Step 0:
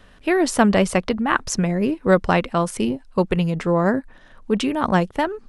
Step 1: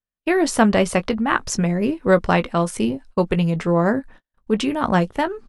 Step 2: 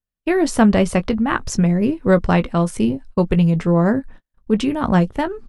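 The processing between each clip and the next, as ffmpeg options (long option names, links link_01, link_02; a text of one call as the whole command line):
ffmpeg -i in.wav -filter_complex "[0:a]agate=range=-46dB:threshold=-40dB:ratio=16:detection=peak,asplit=2[link_01][link_02];[link_02]adelay=18,volume=-11.5dB[link_03];[link_01][link_03]amix=inputs=2:normalize=0" out.wav
ffmpeg -i in.wav -af "lowshelf=frequency=250:gain=10,volume=-2dB" out.wav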